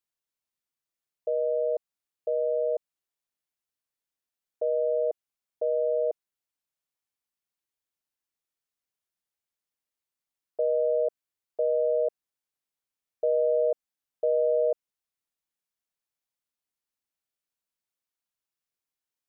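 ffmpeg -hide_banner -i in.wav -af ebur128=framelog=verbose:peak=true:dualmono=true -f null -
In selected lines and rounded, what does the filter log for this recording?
Integrated loudness:
  I:         -24.7 LUFS
  Threshold: -35.0 LUFS
Loudness range:
  LRA:         5.6 LU
  Threshold: -48.0 LUFS
  LRA low:   -31.0 LUFS
  LRA high:  -25.4 LUFS
True peak:
  Peak:      -17.5 dBFS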